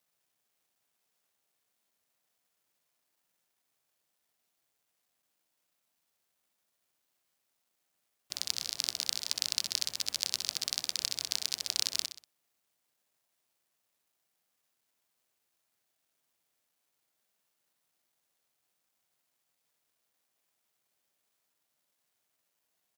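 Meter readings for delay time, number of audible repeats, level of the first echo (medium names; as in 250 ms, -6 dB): 63 ms, 3, -9.5 dB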